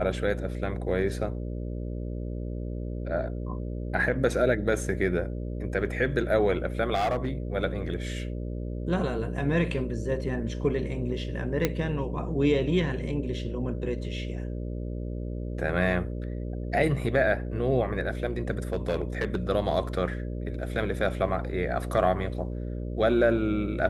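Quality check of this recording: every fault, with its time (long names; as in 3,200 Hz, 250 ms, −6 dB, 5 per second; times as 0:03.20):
mains buzz 60 Hz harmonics 10 −33 dBFS
0:06.94–0:07.28: clipping −22.5 dBFS
0:11.65: click −9 dBFS
0:18.73–0:19.36: clipping −21 dBFS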